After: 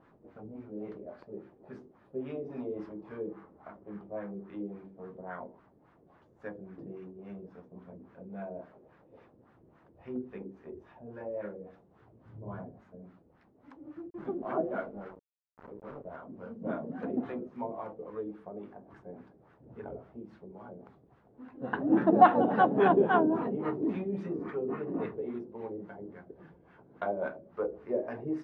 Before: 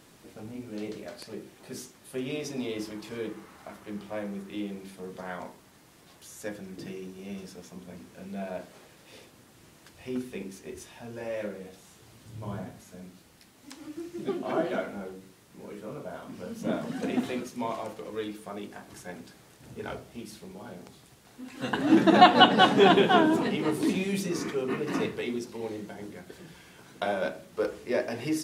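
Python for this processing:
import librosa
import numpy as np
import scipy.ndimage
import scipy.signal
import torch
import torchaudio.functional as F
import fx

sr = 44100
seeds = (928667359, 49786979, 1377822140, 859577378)

y = fx.sample_gate(x, sr, floor_db=-40.0, at=(14.1, 16.16))
y = fx.filter_lfo_lowpass(y, sr, shape='sine', hz=3.6, low_hz=440.0, high_hz=1500.0, q=1.7)
y = y * 10.0 ** (-6.0 / 20.0)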